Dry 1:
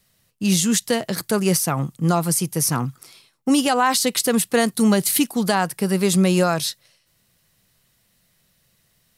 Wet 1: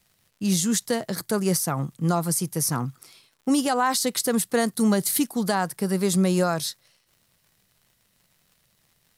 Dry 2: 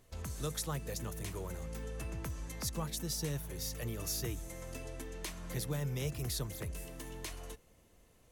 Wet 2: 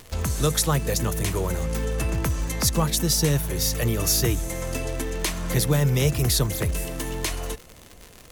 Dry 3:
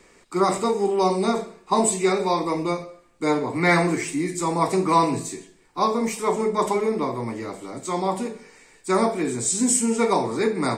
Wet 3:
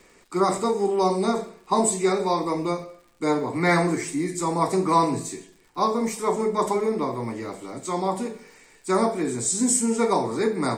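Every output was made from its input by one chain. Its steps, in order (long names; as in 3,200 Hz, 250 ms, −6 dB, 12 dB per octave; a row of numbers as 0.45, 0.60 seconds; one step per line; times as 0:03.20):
dynamic equaliser 2,700 Hz, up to −7 dB, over −45 dBFS, Q 2.4
surface crackle 140 per second −45 dBFS
loudness normalisation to −24 LKFS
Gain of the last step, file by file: −4.0, +16.0, −1.0 decibels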